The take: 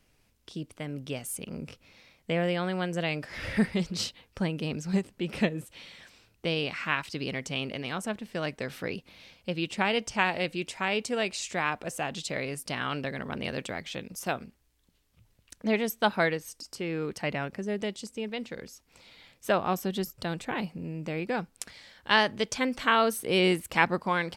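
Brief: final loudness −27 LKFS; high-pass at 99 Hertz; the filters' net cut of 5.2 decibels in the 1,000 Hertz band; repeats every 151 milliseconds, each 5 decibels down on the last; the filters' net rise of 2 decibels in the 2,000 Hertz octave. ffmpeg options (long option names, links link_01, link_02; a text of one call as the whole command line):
ffmpeg -i in.wav -af "highpass=99,equalizer=frequency=1000:width_type=o:gain=-8.5,equalizer=frequency=2000:width_type=o:gain=5,aecho=1:1:151|302|453|604|755|906|1057:0.562|0.315|0.176|0.0988|0.0553|0.031|0.0173,volume=2dB" out.wav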